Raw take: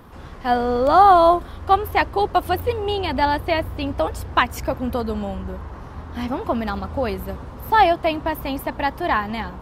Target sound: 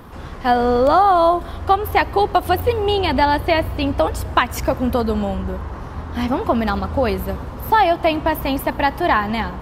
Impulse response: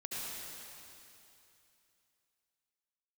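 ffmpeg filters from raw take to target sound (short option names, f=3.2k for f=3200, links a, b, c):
-filter_complex "[0:a]acompressor=threshold=-16dB:ratio=6,asplit=2[a][b];[1:a]atrim=start_sample=2205,asetrate=83790,aresample=44100[c];[b][c]afir=irnorm=-1:irlink=0,volume=-17dB[d];[a][d]amix=inputs=2:normalize=0,volume=5dB"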